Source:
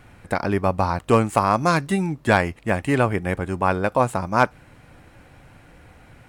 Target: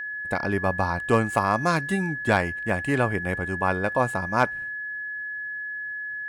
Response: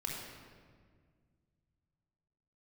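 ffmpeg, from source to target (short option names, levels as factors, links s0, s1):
-af "agate=range=0.0224:threshold=0.0141:ratio=3:detection=peak,aeval=exprs='val(0)+0.0501*sin(2*PI*1700*n/s)':c=same,volume=0.631"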